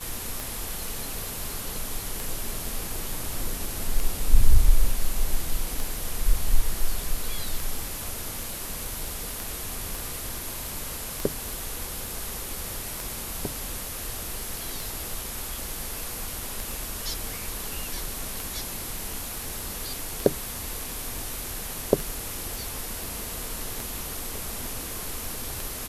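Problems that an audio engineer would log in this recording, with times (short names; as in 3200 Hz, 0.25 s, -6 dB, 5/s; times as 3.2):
tick 33 1/3 rpm
9.95 pop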